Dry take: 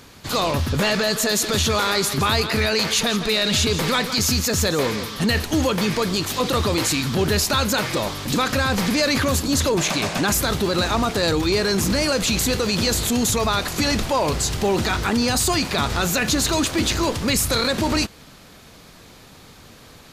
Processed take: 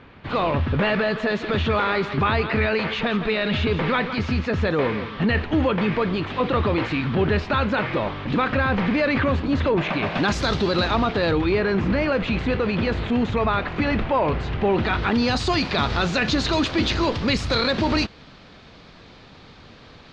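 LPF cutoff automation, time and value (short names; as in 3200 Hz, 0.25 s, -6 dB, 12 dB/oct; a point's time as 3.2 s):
LPF 24 dB/oct
10.02 s 2800 Hz
10.43 s 5300 Hz
11.62 s 2700 Hz
14.63 s 2700 Hz
15.36 s 4500 Hz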